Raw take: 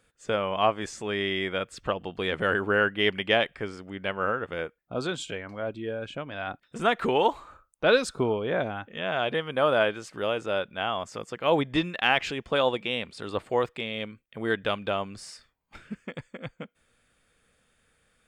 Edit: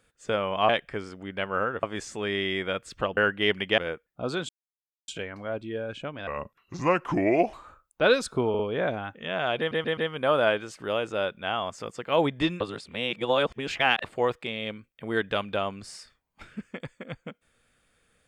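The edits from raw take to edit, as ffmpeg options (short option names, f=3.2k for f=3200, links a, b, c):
-filter_complex "[0:a]asplit=15[a][b][c][d][e][f][g][h][i][j][k][l][m][n][o];[a]atrim=end=0.692[p];[b]atrim=start=3.358:end=4.502[q];[c]atrim=start=0.688:end=2.032[r];[d]atrim=start=2.748:end=3.362[s];[e]atrim=start=4.498:end=5.21,asetpts=PTS-STARTPTS,afade=t=out:st=0.708:d=0.004:c=hsin,apad=pad_dur=0.59[t];[f]atrim=start=5.21:end=6.404,asetpts=PTS-STARTPTS,afade=t=in:d=0.004:c=hsin[u];[g]atrim=start=6.4:end=7.36,asetpts=PTS-STARTPTS,asetrate=33516,aresample=44100,atrim=end_sample=55705,asetpts=PTS-STARTPTS[v];[h]atrim=start=7.356:end=8.372[w];[i]atrim=start=8.318:end=8.372[x];[j]atrim=start=8.318:end=9.442[y];[k]atrim=start=9.308:end=9.442[z];[l]atrim=start=9.308:end=9.442[aa];[m]atrim=start=9.308:end=11.942[ab];[n]atrim=start=11.938:end=13.382,asetpts=PTS-STARTPTS,areverse[ac];[o]atrim=start=13.378[ad];[p][q]acrossfade=d=0.004:c1=hsin:c2=hsin[ae];[ae][r]acrossfade=d=0.004:c1=hsin:c2=hsin[af];[af][s]acrossfade=d=0.004:c1=hsin:c2=hsin[ag];[t][u]concat=n=2:v=0:a=1[ah];[ag][ah]acrossfade=d=0.004:c1=hsin:c2=hsin[ai];[ai][v]acrossfade=d=0.004:c1=hsin:c2=hsin[aj];[aj][w]acrossfade=d=0.004:c1=hsin:c2=hsin[ak];[ak][x]acrossfade=d=0.004:c1=hsin:c2=hsin[al];[al][y]acrossfade=d=0.004:c1=hsin:c2=hsin[am];[am][z]acrossfade=d=0.004:c1=hsin:c2=hsin[an];[an][aa]acrossfade=d=0.004:c1=hsin:c2=hsin[ao];[ao][ab]acrossfade=d=0.004:c1=hsin:c2=hsin[ap];[ap][ac]acrossfade=d=0.004:c1=hsin:c2=hsin[aq];[aq][ad]acrossfade=d=0.004:c1=hsin:c2=hsin"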